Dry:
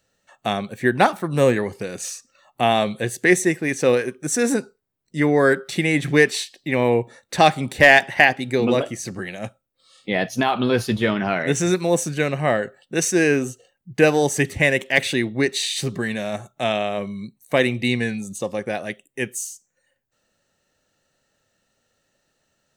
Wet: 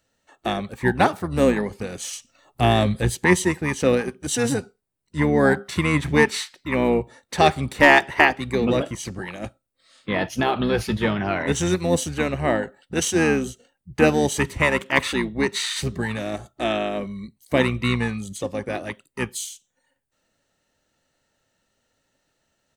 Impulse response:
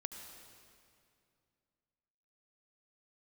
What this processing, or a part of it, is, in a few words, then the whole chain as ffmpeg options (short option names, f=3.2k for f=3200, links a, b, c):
octave pedal: -filter_complex "[0:a]asettb=1/sr,asplit=3[a][b][c];[a]atrim=end=2.134[d];[b]atrim=start=2.13:end=3.15,asetpts=PTS-STARTPTS,afade=t=in:d=0.004:c=qsin,afade=t=out:st=1.016:d=0.004:c=qsin,bass=f=250:g=10,treble=f=4k:g=4[e];[c]atrim=start=3.146[f];[d][e]acrossfade=d=0.004:c1=hsin:c2=qsin[g];[g][f]acrossfade=d=0.004:c1=qsin:c2=hsin,asplit=2[h][i];[i]asetrate=22050,aresample=44100,atempo=2,volume=-6dB[j];[h][j]amix=inputs=2:normalize=0,volume=-2.5dB"